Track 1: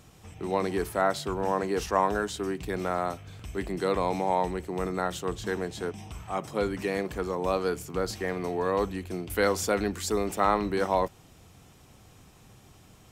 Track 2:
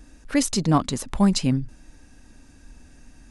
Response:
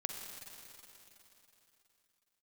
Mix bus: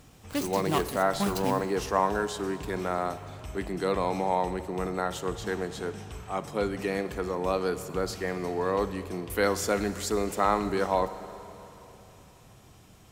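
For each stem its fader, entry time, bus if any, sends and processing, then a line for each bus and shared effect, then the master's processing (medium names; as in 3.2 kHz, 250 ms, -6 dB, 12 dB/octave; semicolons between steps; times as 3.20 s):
-4.0 dB, 0.00 s, send -5 dB, none
-6.0 dB, 0.00 s, send -8.5 dB, median filter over 25 samples; tilt EQ +3.5 dB/octave; modulation noise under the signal 19 dB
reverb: on, RT60 3.4 s, pre-delay 41 ms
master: none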